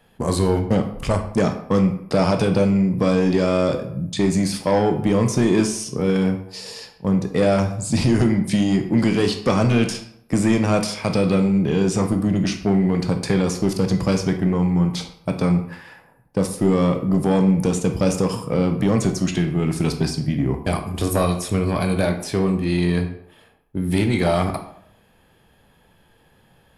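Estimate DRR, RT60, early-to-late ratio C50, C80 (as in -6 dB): 5.0 dB, 0.70 s, 9.5 dB, 12.5 dB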